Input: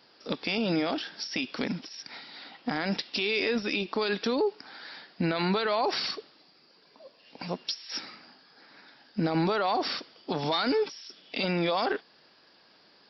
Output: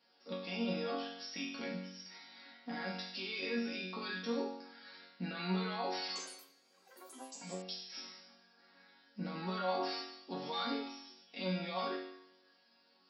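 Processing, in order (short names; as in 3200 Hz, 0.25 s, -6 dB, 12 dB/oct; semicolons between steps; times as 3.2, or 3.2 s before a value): HPF 42 Hz; resonator bank F#3 major, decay 0.8 s; 6.04–8.11 echoes that change speed 0.116 s, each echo +6 st, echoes 3, each echo -6 dB; gain +11.5 dB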